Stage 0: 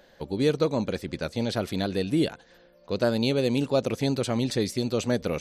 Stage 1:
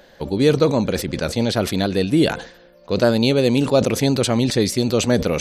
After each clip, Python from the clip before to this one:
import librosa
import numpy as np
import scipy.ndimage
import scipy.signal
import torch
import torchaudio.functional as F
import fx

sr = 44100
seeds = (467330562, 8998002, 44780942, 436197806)

y = fx.sustainer(x, sr, db_per_s=110.0)
y = y * 10.0 ** (7.5 / 20.0)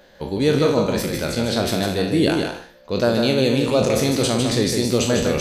y = fx.spec_trails(x, sr, decay_s=0.5)
y = fx.echo_multitap(y, sr, ms=(153, 228), db=(-5.0, -15.0))
y = y * 10.0 ** (-3.5 / 20.0)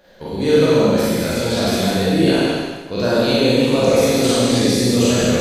y = fx.rev_schroeder(x, sr, rt60_s=1.2, comb_ms=33, drr_db=-7.0)
y = y * 10.0 ** (-4.5 / 20.0)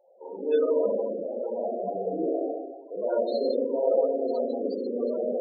y = fx.wiener(x, sr, points=25)
y = scipy.signal.sosfilt(scipy.signal.butter(2, 560.0, 'highpass', fs=sr, output='sos'), y)
y = fx.spec_topn(y, sr, count=16)
y = y * 10.0 ** (-3.0 / 20.0)